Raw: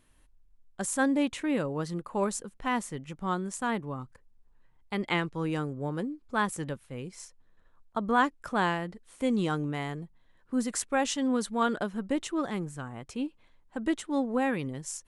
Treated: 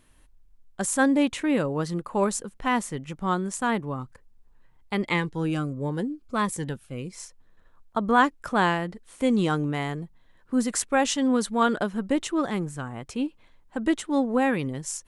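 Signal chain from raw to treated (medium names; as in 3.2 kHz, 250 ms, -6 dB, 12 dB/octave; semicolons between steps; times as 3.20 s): 5.06–7.15 s: Shepard-style phaser falling 1.5 Hz; trim +5 dB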